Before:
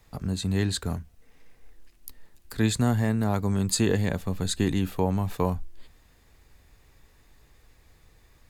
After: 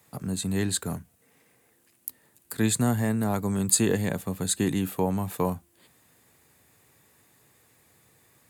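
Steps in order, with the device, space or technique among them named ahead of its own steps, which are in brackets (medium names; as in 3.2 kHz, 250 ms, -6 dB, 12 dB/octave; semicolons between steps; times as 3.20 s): budget condenser microphone (high-pass 110 Hz 24 dB/octave; resonant high shelf 6.9 kHz +7 dB, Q 1.5)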